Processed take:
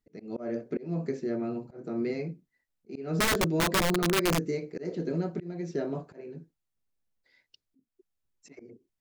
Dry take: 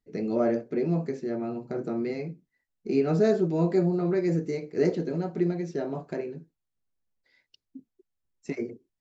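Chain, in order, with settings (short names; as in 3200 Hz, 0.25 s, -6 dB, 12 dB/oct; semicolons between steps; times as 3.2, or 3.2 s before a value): auto swell 0.311 s; wrapped overs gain 19 dB; dynamic EQ 820 Hz, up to -6 dB, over -46 dBFS, Q 2.9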